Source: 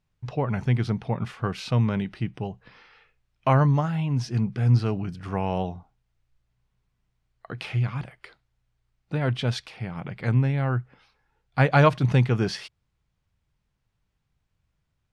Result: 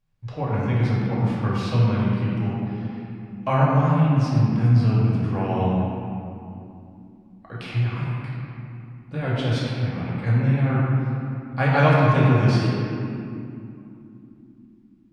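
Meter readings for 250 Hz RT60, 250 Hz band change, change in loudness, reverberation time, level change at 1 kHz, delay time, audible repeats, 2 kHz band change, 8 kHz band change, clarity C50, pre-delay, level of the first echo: 4.9 s, +5.0 dB, +3.0 dB, 2.9 s, +3.0 dB, no echo audible, no echo audible, +2.5 dB, can't be measured, −3.0 dB, 4 ms, no echo audible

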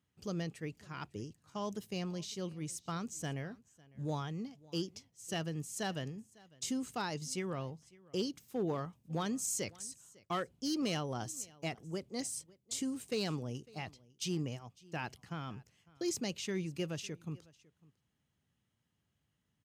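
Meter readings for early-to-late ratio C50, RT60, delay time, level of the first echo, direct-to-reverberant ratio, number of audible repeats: no reverb audible, no reverb audible, 552 ms, −23.5 dB, no reverb audible, 1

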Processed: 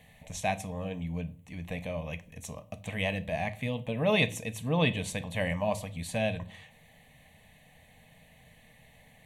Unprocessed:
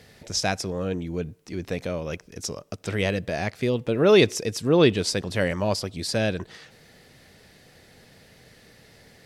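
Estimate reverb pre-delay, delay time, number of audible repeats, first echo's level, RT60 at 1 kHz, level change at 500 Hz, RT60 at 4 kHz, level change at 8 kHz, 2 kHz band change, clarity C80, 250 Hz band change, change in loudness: 3 ms, no echo audible, no echo audible, no echo audible, 0.40 s, −10.0 dB, 0.35 s, −9.5 dB, −4.0 dB, 23.5 dB, −8.0 dB, −7.5 dB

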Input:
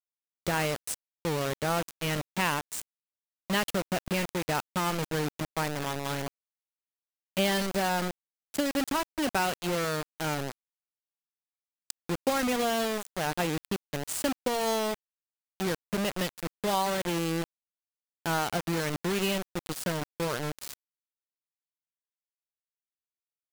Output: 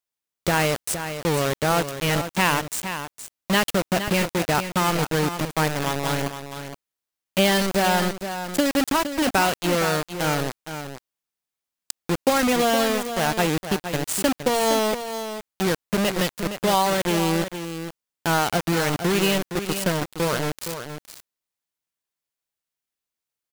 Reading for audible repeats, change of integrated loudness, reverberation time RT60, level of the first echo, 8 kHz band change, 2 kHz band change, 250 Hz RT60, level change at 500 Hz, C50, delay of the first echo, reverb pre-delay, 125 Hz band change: 1, +7.5 dB, no reverb audible, −9.5 dB, +8.0 dB, +8.0 dB, no reverb audible, +8.0 dB, no reverb audible, 465 ms, no reverb audible, +8.0 dB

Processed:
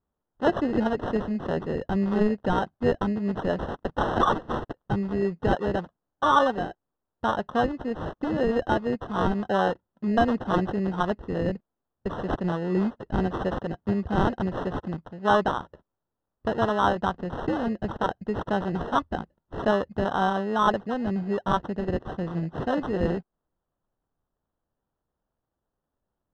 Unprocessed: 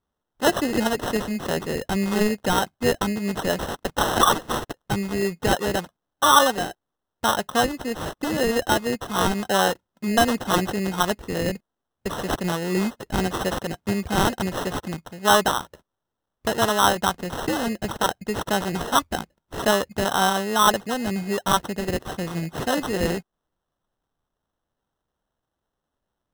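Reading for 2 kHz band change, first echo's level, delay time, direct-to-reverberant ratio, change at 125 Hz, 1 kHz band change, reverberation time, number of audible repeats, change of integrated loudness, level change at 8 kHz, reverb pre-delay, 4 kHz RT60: −6.5 dB, no echo audible, no echo audible, no reverb audible, −0.5 dB, −3.5 dB, no reverb audible, no echo audible, −3.5 dB, below −25 dB, no reverb audible, no reverb audible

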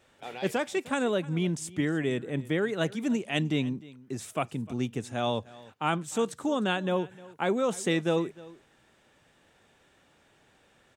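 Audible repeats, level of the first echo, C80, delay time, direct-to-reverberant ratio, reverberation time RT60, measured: 1, −20.5 dB, no reverb audible, 305 ms, no reverb audible, no reverb audible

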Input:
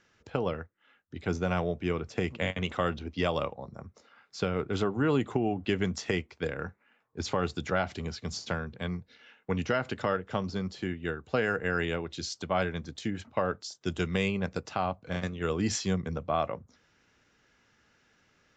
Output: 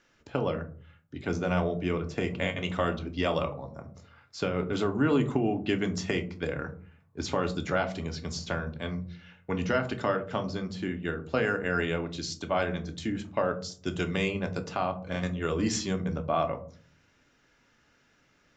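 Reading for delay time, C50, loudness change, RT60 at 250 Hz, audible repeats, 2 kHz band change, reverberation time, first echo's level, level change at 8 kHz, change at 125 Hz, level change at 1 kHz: no echo audible, 14.5 dB, +1.0 dB, 0.65 s, no echo audible, +1.0 dB, 0.45 s, no echo audible, +0.5 dB, +1.0 dB, +1.0 dB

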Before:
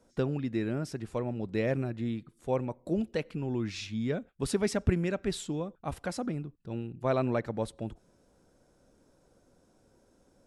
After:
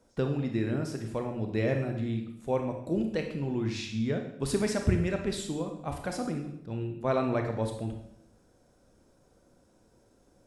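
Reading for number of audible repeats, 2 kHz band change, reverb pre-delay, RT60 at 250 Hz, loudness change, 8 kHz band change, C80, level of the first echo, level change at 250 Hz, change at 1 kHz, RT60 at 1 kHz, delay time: no echo audible, +1.5 dB, 25 ms, 0.80 s, +1.5 dB, +1.5 dB, 9.5 dB, no echo audible, +1.5 dB, +2.0 dB, 0.70 s, no echo audible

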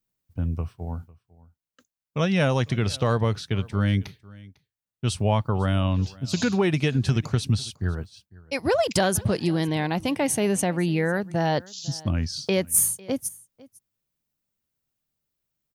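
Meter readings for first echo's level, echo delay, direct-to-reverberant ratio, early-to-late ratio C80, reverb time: −22.5 dB, 501 ms, no reverb audible, no reverb audible, no reverb audible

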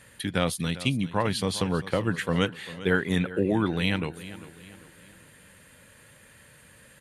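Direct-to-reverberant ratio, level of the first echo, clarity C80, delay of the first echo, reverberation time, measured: no reverb audible, −16.0 dB, no reverb audible, 397 ms, no reverb audible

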